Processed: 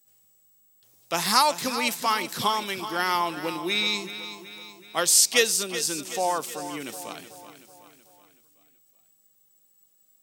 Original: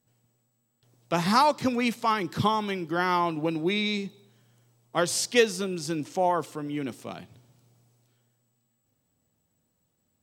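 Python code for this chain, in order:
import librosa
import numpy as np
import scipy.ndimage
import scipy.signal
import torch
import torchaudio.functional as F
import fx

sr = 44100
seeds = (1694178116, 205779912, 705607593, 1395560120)

y = fx.riaa(x, sr, side='recording')
y = fx.echo_feedback(y, sr, ms=376, feedback_pct=51, wet_db=-12.0)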